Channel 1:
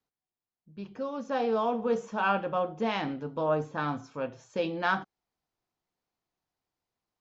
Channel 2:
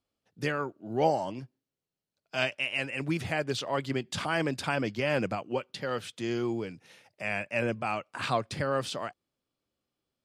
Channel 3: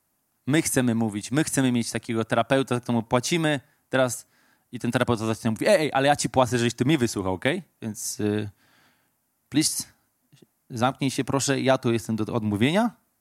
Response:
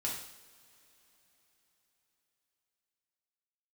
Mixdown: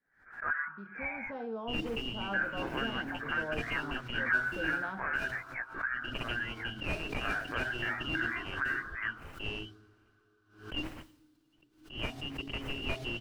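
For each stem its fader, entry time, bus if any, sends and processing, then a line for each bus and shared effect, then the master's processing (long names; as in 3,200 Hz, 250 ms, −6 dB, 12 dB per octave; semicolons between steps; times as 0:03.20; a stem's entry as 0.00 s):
−5.5 dB, 0.00 s, no bus, no send, high-pass filter 170 Hz 24 dB per octave; high-shelf EQ 11,000 Hz −10 dB; automatic ducking −9 dB, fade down 0.95 s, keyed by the second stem
0.0 dB, 0.00 s, bus A, send −17 dB, Butterworth high-pass 890 Hz 36 dB per octave; multi-voice chorus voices 6, 0.66 Hz, delay 16 ms, depth 1.6 ms; low-pass with resonance 1,500 Hz, resonance Q 15
−13.5 dB, 1.20 s, bus A, send −16.5 dB, comb filter 2.8 ms, depth 67%; tape wow and flutter 26 cents; short delay modulated by noise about 4,000 Hz, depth 0.22 ms
bus A: 0.0 dB, voice inversion scrambler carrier 3,100 Hz; downward compressor, threshold −30 dBFS, peak gain reduction 18 dB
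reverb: on, pre-delay 3 ms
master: spectral tilt −3 dB per octave; background raised ahead of every attack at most 120 dB per second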